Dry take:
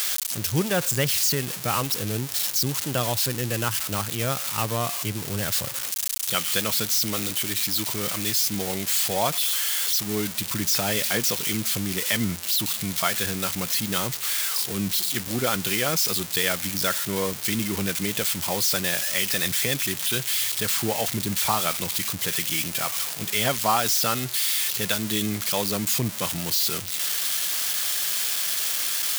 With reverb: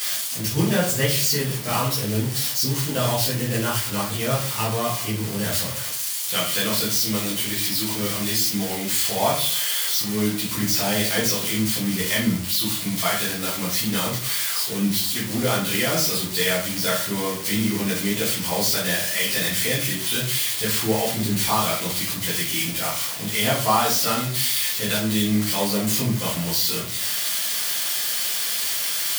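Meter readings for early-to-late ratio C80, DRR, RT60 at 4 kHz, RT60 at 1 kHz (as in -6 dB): 10.5 dB, -8.0 dB, 0.35 s, 0.50 s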